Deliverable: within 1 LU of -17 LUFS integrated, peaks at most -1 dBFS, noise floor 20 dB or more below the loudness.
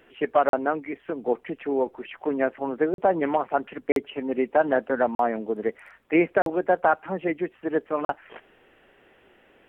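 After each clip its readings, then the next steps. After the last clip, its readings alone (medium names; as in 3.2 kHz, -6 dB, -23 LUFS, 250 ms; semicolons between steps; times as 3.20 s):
dropouts 6; longest dropout 42 ms; loudness -25.5 LUFS; peak level -8.5 dBFS; loudness target -17.0 LUFS
-> interpolate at 0.49/2.94/3.92/5.15/6.42/8.05 s, 42 ms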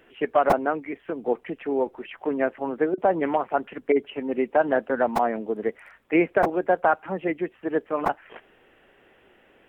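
dropouts 0; loudness -25.5 LUFS; peak level -5.5 dBFS; loudness target -17.0 LUFS
-> trim +8.5 dB; peak limiter -1 dBFS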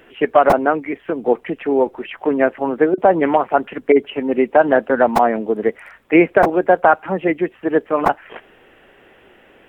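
loudness -17.0 LUFS; peak level -1.0 dBFS; noise floor -50 dBFS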